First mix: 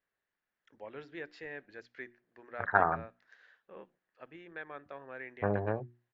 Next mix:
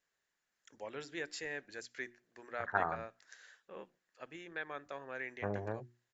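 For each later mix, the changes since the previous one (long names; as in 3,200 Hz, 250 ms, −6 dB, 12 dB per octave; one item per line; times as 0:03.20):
first voice: remove high-frequency loss of the air 310 metres
second voice −7.0 dB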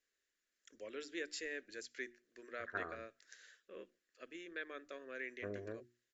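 second voice −3.0 dB
master: add phaser with its sweep stopped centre 350 Hz, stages 4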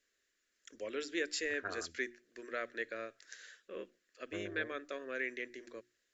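first voice +7.0 dB
second voice: entry −1.10 s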